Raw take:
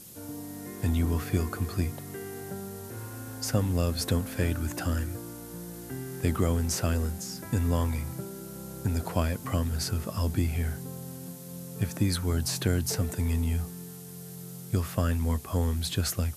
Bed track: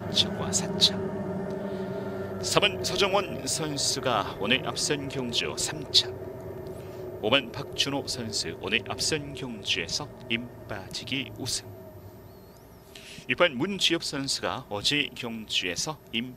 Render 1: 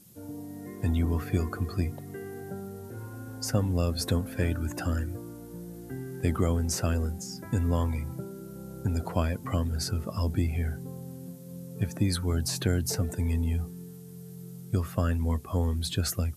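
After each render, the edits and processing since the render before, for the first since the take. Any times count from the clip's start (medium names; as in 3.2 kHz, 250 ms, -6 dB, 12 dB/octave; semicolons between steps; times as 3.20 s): noise reduction 10 dB, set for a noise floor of -43 dBFS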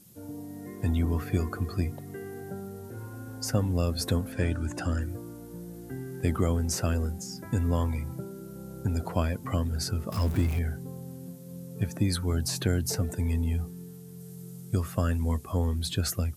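4.32–5.02 s: low-pass 10 kHz 24 dB/octave; 10.12–10.59 s: jump at every zero crossing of -33 dBFS; 14.20–15.52 s: peaking EQ 8.5 kHz +4 dB 1.2 oct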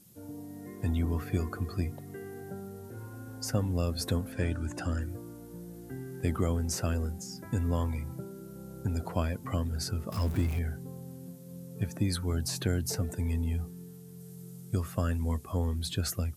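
trim -3 dB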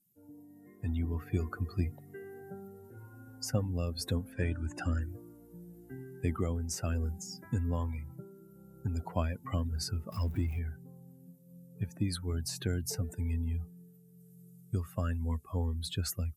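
expander on every frequency bin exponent 1.5; gain riding 0.5 s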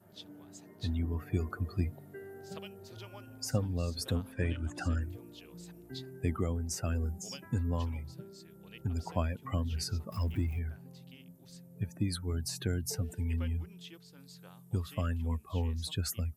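add bed track -27 dB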